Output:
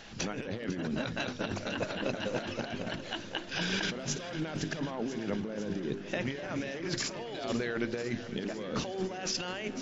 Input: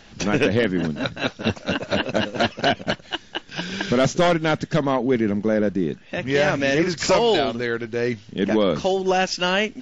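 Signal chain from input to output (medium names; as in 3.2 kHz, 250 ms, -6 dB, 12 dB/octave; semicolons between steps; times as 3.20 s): bass shelf 190 Hz -3 dB; hum notches 50/100/150/200/250/300/350/400 Hz; compressor with a negative ratio -29 dBFS, ratio -1; on a send: echo whose repeats swap between lows and highs 250 ms, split 1.1 kHz, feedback 86%, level -12 dB; on the sum: trim -7 dB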